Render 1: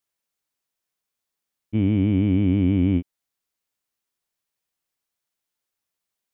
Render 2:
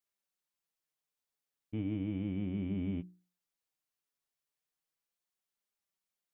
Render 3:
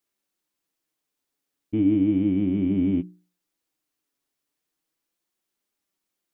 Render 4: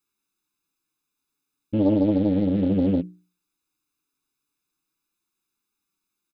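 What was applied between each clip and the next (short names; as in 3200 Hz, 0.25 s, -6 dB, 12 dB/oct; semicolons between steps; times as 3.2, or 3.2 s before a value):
flange 0.35 Hz, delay 4.8 ms, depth 2.5 ms, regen +40%; limiter -23.5 dBFS, peak gain reduction 8.5 dB; notches 60/120/180/240/300/360 Hz; gain -3.5 dB
bell 300 Hz +11.5 dB 0.68 oct; gain +7 dB
comb 0.8 ms, depth 97%; Doppler distortion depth 0.66 ms; gain -2 dB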